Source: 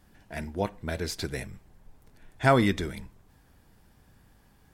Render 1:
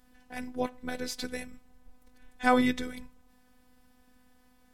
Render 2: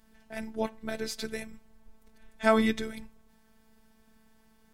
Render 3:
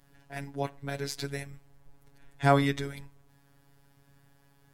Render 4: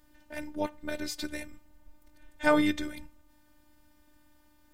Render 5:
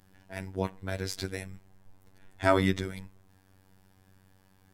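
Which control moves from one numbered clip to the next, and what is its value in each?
robot voice, frequency: 250 Hz, 220 Hz, 140 Hz, 300 Hz, 95 Hz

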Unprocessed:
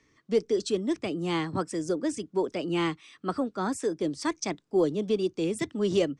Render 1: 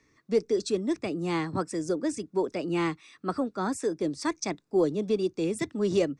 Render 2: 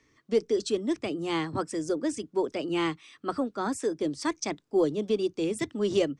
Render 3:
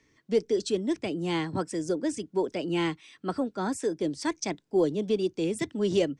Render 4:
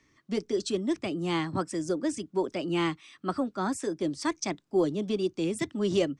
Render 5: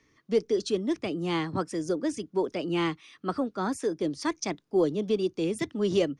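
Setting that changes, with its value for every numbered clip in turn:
band-stop, frequency: 3.1 kHz, 180 Hz, 1.2 kHz, 460 Hz, 7.8 kHz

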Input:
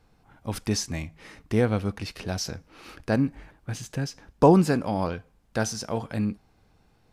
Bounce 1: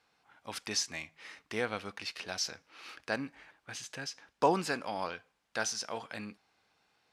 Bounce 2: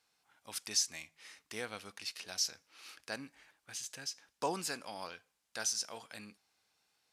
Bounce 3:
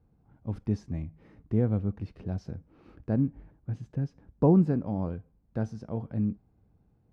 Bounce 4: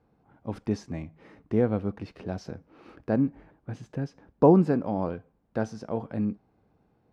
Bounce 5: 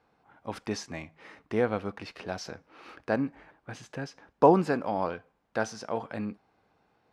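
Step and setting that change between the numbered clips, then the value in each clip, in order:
band-pass filter, frequency: 3 kHz, 7.8 kHz, 110 Hz, 320 Hz, 920 Hz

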